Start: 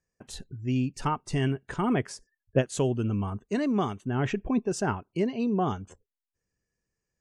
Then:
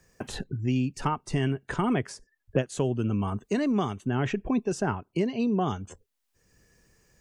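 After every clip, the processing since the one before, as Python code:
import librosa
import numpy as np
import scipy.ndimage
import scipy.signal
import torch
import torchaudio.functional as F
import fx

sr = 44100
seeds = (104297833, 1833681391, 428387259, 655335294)

y = fx.band_squash(x, sr, depth_pct=70)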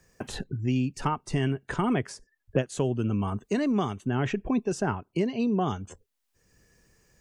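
y = x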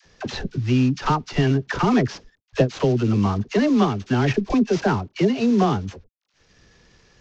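y = fx.cvsd(x, sr, bps=32000)
y = fx.dispersion(y, sr, late='lows', ms=50.0, hz=640.0)
y = F.gain(torch.from_numpy(y), 8.0).numpy()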